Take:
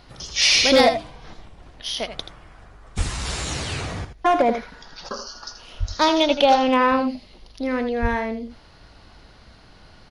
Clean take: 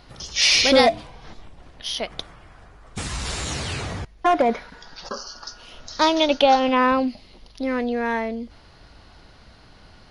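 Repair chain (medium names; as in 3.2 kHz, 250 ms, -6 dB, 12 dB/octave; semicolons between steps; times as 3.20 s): clip repair -7 dBFS; 2.97–3.09 s: high-pass 140 Hz 24 dB/octave; 5.79–5.91 s: high-pass 140 Hz 24 dB/octave; 8.01–8.13 s: high-pass 140 Hz 24 dB/octave; inverse comb 81 ms -10 dB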